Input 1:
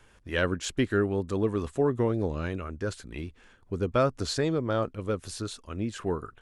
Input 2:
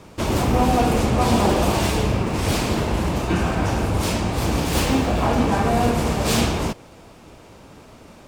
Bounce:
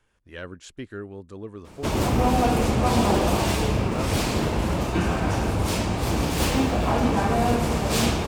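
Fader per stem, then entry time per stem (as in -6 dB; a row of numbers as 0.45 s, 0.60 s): -10.5 dB, -2.5 dB; 0.00 s, 1.65 s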